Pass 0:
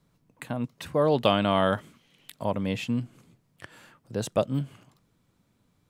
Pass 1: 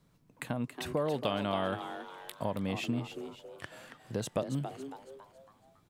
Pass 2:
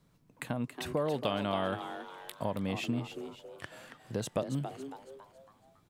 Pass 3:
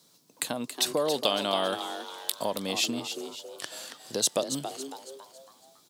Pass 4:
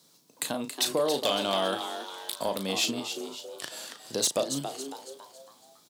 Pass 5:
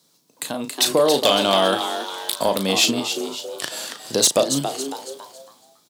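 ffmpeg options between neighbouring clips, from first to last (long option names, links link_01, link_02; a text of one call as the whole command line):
ffmpeg -i in.wav -filter_complex "[0:a]acompressor=threshold=-31dB:ratio=3,asplit=2[link_01][link_02];[link_02]asplit=5[link_03][link_04][link_05][link_06][link_07];[link_03]adelay=277,afreqshift=130,volume=-9.5dB[link_08];[link_04]adelay=554,afreqshift=260,volume=-16.8dB[link_09];[link_05]adelay=831,afreqshift=390,volume=-24.2dB[link_10];[link_06]adelay=1108,afreqshift=520,volume=-31.5dB[link_11];[link_07]adelay=1385,afreqshift=650,volume=-38.8dB[link_12];[link_08][link_09][link_10][link_11][link_12]amix=inputs=5:normalize=0[link_13];[link_01][link_13]amix=inputs=2:normalize=0" out.wav
ffmpeg -i in.wav -af anull out.wav
ffmpeg -i in.wav -af "highpass=300,highshelf=frequency=3100:width_type=q:width=1.5:gain=11.5,volume=5.5dB" out.wav
ffmpeg -i in.wav -filter_complex "[0:a]asplit=2[link_01][link_02];[link_02]adelay=36,volume=-8.5dB[link_03];[link_01][link_03]amix=inputs=2:normalize=0,asoftclip=type=hard:threshold=-18.5dB" out.wav
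ffmpeg -i in.wav -af "dynaudnorm=framelen=120:gausssize=11:maxgain=10dB" out.wav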